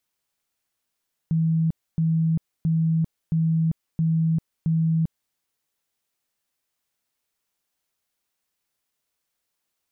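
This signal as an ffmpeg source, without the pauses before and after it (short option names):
-f lavfi -i "aevalsrc='0.126*sin(2*PI*162*mod(t,0.67))*lt(mod(t,0.67),64/162)':d=4.02:s=44100"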